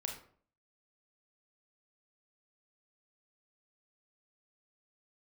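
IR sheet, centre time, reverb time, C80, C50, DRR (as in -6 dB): 25 ms, 0.50 s, 10.5 dB, 6.5 dB, 1.5 dB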